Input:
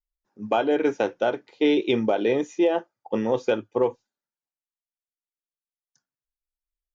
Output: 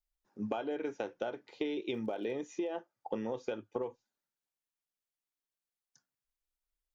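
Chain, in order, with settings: compressor 12:1, threshold -33 dBFS, peak gain reduction 17 dB; 1.91–2.45 crackle 72/s -> 17/s -52 dBFS

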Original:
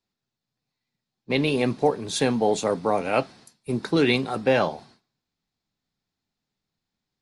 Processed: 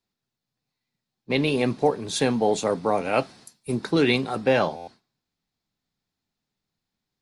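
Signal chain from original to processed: 3.17–3.74 high shelf 8800 Hz -> 6100 Hz +8.5 dB; stuck buffer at 4.76, samples 512, times 9

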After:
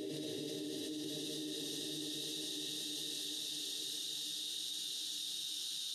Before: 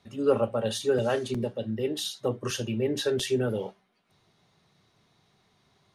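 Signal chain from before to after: Paulstretch 36×, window 0.25 s, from 1.93; diffused feedback echo 0.909 s, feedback 54%, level -12 dB; level quantiser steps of 23 dB; gain +4 dB

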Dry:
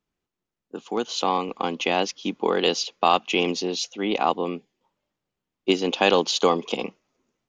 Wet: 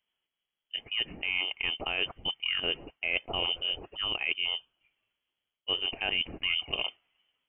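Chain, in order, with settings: low shelf 120 Hz -6.5 dB; reverse; compressor 6:1, threshold -27 dBFS, peak gain reduction 13.5 dB; reverse; inverted band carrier 3300 Hz

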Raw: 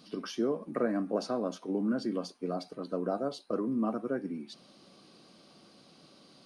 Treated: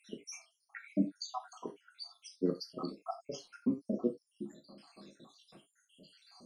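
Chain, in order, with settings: random spectral dropouts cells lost 82%; non-linear reverb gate 0.11 s falling, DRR 3 dB; gain +3 dB

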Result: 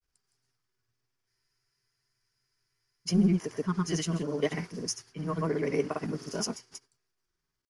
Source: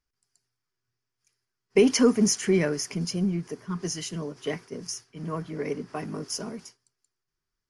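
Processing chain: grains 0.1 s, spray 0.1 s, pitch spread up and down by 0 st; spectral freeze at 1.3, 1.77 s; gain +3.5 dB

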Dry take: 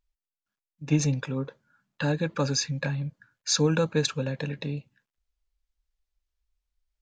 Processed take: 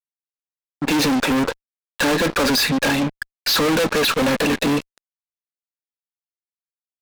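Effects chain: elliptic band-pass 240–4400 Hz, stop band 40 dB; fuzz box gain 50 dB, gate -54 dBFS; gain -3.5 dB

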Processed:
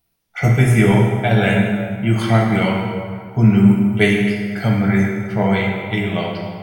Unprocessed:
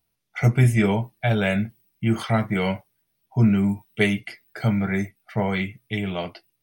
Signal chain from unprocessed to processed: plate-style reverb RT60 2.1 s, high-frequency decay 0.65×, DRR -1 dB; gain +3.5 dB

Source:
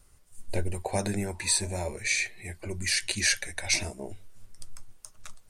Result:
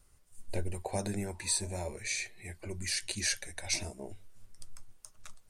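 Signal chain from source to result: dynamic EQ 2000 Hz, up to -5 dB, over -40 dBFS, Q 0.92; gain -5 dB

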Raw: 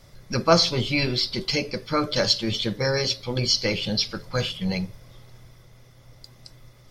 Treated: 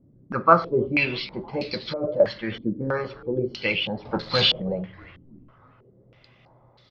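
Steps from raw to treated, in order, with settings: HPF 150 Hz 6 dB/oct; 1.6–2.2 negative-ratio compressor -28 dBFS, ratio -1; 4.05–4.62 sample leveller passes 3; air absorption 93 m; frequency-shifting echo 0.32 s, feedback 57%, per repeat -96 Hz, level -22 dB; reverb RT60 0.60 s, pre-delay 6 ms, DRR 18 dB; stepped low-pass 3.1 Hz 280–4000 Hz; gain -2.5 dB

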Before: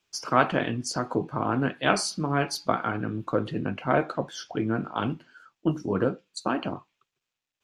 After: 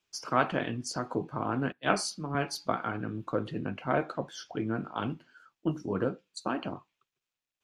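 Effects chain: 1.72–2.35 three-band expander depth 70%; gain -5 dB

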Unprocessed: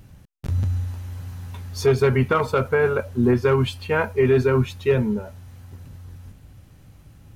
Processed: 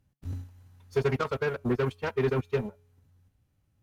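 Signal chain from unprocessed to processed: resonator 140 Hz, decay 1.3 s, mix 50%; added harmonics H 7 -19 dB, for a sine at -13.5 dBFS; time stretch by phase-locked vocoder 0.52×; gain -2.5 dB

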